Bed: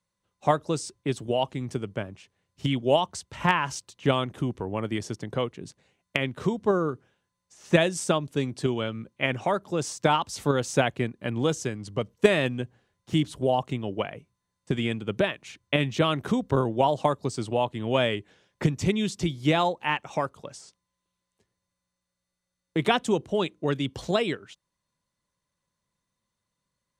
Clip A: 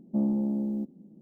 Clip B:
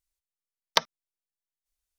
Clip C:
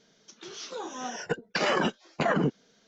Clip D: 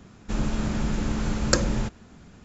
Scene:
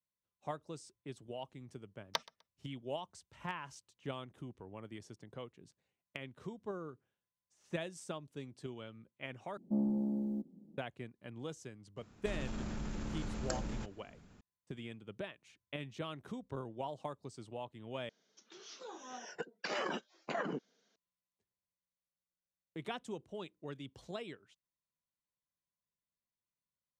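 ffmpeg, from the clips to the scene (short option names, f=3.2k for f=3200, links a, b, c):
-filter_complex "[0:a]volume=-19dB[a];[2:a]aecho=1:1:126|252:0.0708|0.0184[b];[4:a]acompressor=threshold=-28dB:ratio=2.5:attack=5.5:release=24:knee=1:detection=peak[c];[3:a]highpass=230[d];[a]asplit=3[e][f][g];[e]atrim=end=9.574[h];[1:a]atrim=end=1.21,asetpts=PTS-STARTPTS,volume=-6.5dB[i];[f]atrim=start=10.776:end=18.094[j];[d]atrim=end=2.87,asetpts=PTS-STARTPTS,volume=-11.5dB[k];[g]atrim=start=20.956[l];[b]atrim=end=1.98,asetpts=PTS-STARTPTS,volume=-13.5dB,afade=t=in:d=0.004:c=hsin,afade=t=out:st=1.976:d=0.004:c=hsin,adelay=1380[m];[c]atrim=end=2.44,asetpts=PTS-STARTPTS,volume=-11.5dB,afade=t=in:d=0.004:c=hsin,afade=t=out:st=2.436:d=0.004:c=hsin,adelay=11970[n];[h][i]acrossfade=d=0.004:c1=hsin:c2=hsin[o];[o][j]acrossfade=d=0.004:c1=hsin:c2=hsin[p];[p][k]acrossfade=d=0.004:c1=hsin:c2=hsin[q];[q][l]acrossfade=d=0.004:c1=hsin:c2=hsin[r];[r][m][n]amix=inputs=3:normalize=0"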